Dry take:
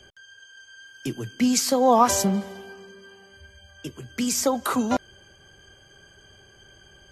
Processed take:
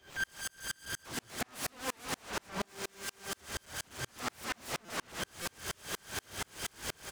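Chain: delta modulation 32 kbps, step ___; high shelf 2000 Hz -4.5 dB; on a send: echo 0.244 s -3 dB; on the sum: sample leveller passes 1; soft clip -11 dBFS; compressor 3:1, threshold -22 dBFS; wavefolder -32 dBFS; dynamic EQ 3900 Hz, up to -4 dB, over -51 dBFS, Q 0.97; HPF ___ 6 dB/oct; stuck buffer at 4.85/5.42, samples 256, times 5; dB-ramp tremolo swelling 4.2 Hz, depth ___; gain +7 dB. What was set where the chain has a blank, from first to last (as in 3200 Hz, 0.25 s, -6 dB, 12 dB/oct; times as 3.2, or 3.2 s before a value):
-27 dBFS, 44 Hz, 38 dB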